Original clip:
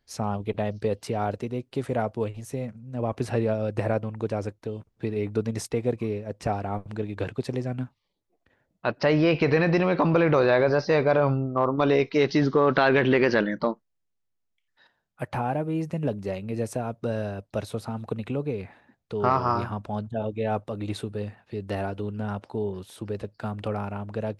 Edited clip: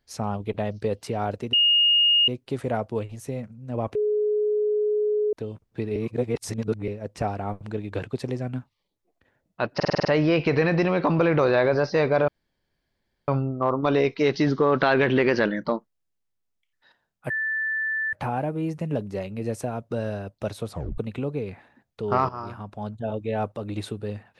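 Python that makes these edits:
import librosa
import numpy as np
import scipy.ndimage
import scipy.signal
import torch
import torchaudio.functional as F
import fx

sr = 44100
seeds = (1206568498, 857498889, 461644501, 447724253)

y = fx.edit(x, sr, fx.insert_tone(at_s=1.53, length_s=0.75, hz=2850.0, db=-15.5),
    fx.bleep(start_s=3.2, length_s=1.38, hz=421.0, db=-20.0),
    fx.reverse_span(start_s=5.21, length_s=0.92),
    fx.stutter(start_s=9.0, slice_s=0.05, count=7),
    fx.insert_room_tone(at_s=11.23, length_s=1.0),
    fx.insert_tone(at_s=15.25, length_s=0.83, hz=1760.0, db=-23.5),
    fx.tape_stop(start_s=17.83, length_s=0.27),
    fx.fade_in_from(start_s=19.41, length_s=0.8, floor_db=-14.0), tone=tone)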